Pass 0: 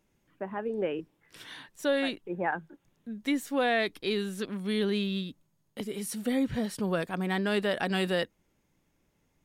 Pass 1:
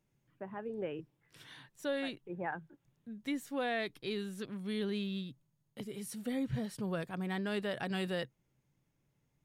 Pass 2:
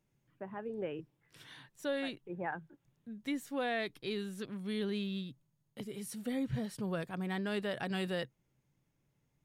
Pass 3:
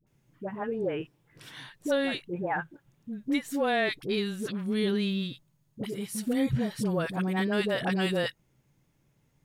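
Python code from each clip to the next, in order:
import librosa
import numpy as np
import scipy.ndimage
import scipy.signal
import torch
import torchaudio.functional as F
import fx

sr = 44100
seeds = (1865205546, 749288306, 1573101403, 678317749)

y1 = fx.peak_eq(x, sr, hz=130.0, db=14.0, octaves=0.45)
y1 = y1 * 10.0 ** (-8.5 / 20.0)
y2 = y1
y3 = fx.dispersion(y2, sr, late='highs', ms=69.0, hz=630.0)
y3 = y3 * 10.0 ** (8.5 / 20.0)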